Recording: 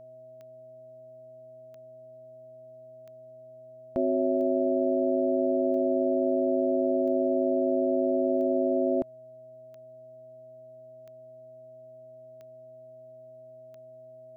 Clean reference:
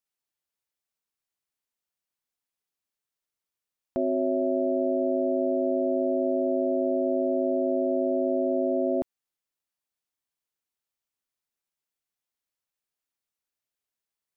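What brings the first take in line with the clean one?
de-click; de-hum 124.8 Hz, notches 4; band-stop 640 Hz, Q 30

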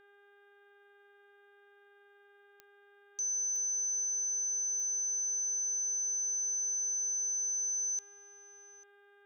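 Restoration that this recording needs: de-click; de-hum 405.2 Hz, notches 9; band-stop 1.6 kHz, Q 30; inverse comb 844 ms -22.5 dB

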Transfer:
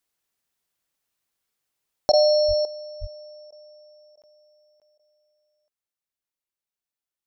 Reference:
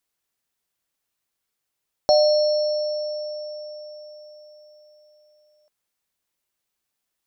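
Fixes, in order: 2.47–2.59 s: high-pass 140 Hz 24 dB/octave; 3.00–3.12 s: high-pass 140 Hz 24 dB/octave; interpolate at 4.22/4.80 s, 17 ms; interpolate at 2.12/3.51/4.16/4.98 s, 12 ms; trim 0 dB, from 2.65 s +12 dB

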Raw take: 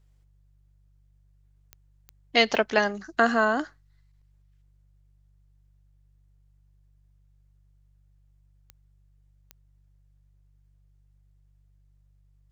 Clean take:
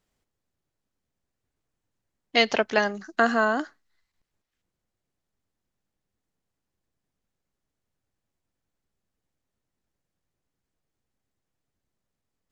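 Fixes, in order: de-click; de-hum 48.9 Hz, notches 3

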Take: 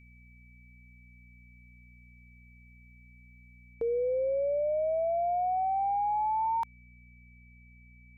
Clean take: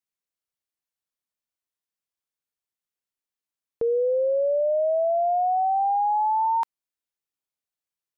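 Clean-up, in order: de-hum 60.4 Hz, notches 4; band-stop 2.3 kHz, Q 30; trim 0 dB, from 3.74 s +6.5 dB

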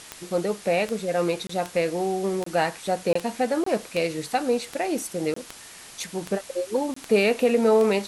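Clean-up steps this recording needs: de-click; interpolate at 1.47/2.44/3.13/3.64/5.34/6.94 s, 24 ms; noise reduction 25 dB, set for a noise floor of -44 dBFS

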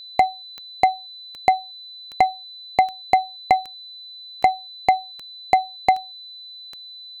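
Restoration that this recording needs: de-click; band-stop 4 kHz, Q 30

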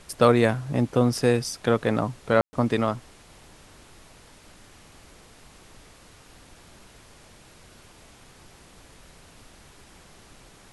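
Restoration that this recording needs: room tone fill 2.41–2.53 s; noise print and reduce 17 dB

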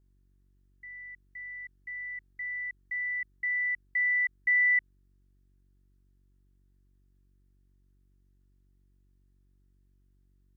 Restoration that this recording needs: de-hum 47.3 Hz, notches 8; expander -58 dBFS, range -21 dB

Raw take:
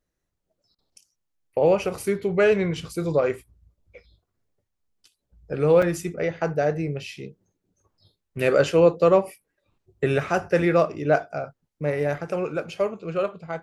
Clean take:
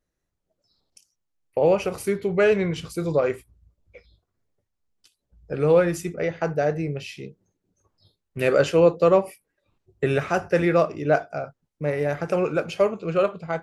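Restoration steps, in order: interpolate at 5.82 s, 4.9 ms; interpolate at 0.75 s, 34 ms; trim 0 dB, from 12.18 s +4 dB

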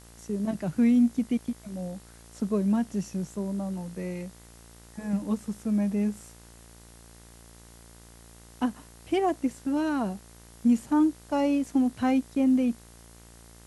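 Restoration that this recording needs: de-hum 57.5 Hz, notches 37; noise print and reduce 21 dB

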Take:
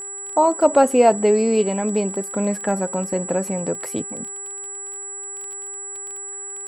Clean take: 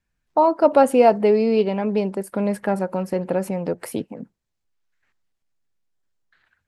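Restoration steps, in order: de-click; de-hum 395.9 Hz, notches 5; band-stop 7.8 kHz, Q 30

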